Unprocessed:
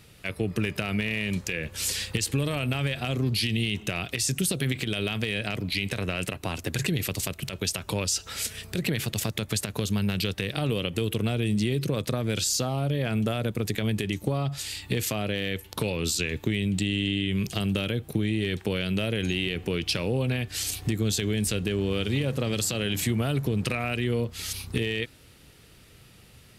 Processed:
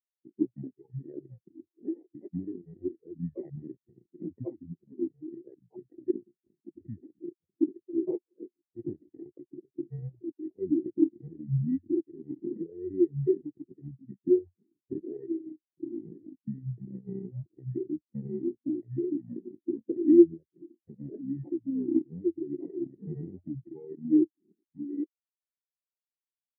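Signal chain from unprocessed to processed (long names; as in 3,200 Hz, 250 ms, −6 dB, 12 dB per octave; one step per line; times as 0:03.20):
sample-and-hold swept by an LFO 33×, swing 100% 0.83 Hz
pitch shifter −7.5 semitones
loudspeaker in its box 170–2,400 Hz, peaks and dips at 350 Hz +6 dB, 1,300 Hz −4 dB, 1,900 Hz +8 dB
every bin expanded away from the loudest bin 4 to 1
level +2 dB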